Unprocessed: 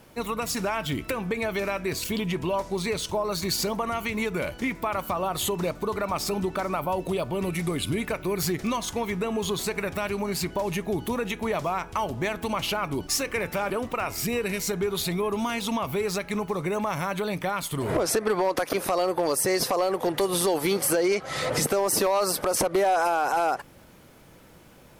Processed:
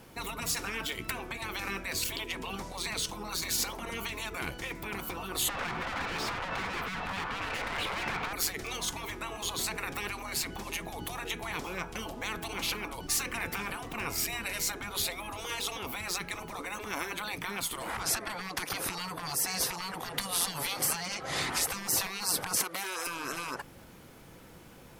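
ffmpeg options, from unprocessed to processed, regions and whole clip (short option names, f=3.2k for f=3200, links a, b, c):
-filter_complex "[0:a]asettb=1/sr,asplit=3[a][b][c];[a]atrim=end=5.494[d];[b]atrim=start=5.49:end=8.33,asetpts=PTS-STARTPTS,afade=t=in:d=0.004:c=qsin,afade=t=out:st=2.836:d=0.004:c=qsin,acrossover=split=340 2800:gain=0.251 1 0.1[e][f][g];[e][f][g]amix=inputs=3:normalize=0,acrossover=split=440|3000[h][i][j];[i]acompressor=threshold=-51dB:ratio=2:attack=3.2:release=140:knee=2.83:detection=peak[k];[h][k][j]amix=inputs=3:normalize=0,asplit=2[l][m];[m]highpass=f=720:p=1,volume=40dB,asoftclip=type=tanh:threshold=-17dB[n];[l][n]amix=inputs=2:normalize=0,lowpass=f=1.2k:p=1,volume=-6dB[o];[c]atrim=start=8.326[p];[d][o]acrossfade=d=0.004:c1=hsin:c2=qsin[q];[q][p]acrossfade=d=0.004:c1=qsin:c2=hsin,asettb=1/sr,asplit=3[r][s][t];[r]atrim=end=22.604[u];[s]atrim=start=22.6:end=23.07,asetpts=PTS-STARTPTS,afade=t=in:d=0.004:c=qsin,afade=t=out:st=0.466:d=0.004:c=qsin,highshelf=f=11k:g=11.5,aeval=exprs='val(0)+0.00355*(sin(2*PI*60*n/s)+sin(2*PI*2*60*n/s)/2+sin(2*PI*3*60*n/s)/3+sin(2*PI*4*60*n/s)/4+sin(2*PI*5*60*n/s)/5)':c=same,highpass=f=1k:p=1[v];[t]atrim=start=23.066[w];[u][v]acrossfade=d=0.004:c1=hsin:c2=qsin[x];[x][w]acrossfade=d=0.004:c1=qsin:c2=hsin,afftfilt=real='re*lt(hypot(re,im),0.112)':imag='im*lt(hypot(re,im),0.112)':win_size=1024:overlap=0.75,bandreject=f=600:w=12"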